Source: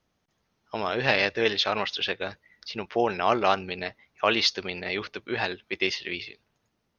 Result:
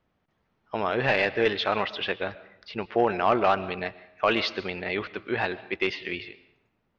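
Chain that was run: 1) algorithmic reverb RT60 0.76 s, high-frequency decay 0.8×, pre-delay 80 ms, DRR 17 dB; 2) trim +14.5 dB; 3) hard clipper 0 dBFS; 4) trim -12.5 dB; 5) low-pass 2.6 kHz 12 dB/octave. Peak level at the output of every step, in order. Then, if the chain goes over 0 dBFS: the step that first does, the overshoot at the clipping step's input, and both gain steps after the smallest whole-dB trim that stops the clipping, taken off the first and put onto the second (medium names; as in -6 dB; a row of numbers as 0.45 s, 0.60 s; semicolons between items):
-4.5 dBFS, +10.0 dBFS, 0.0 dBFS, -12.5 dBFS, -12.0 dBFS; step 2, 10.0 dB; step 2 +4.5 dB, step 4 -2.5 dB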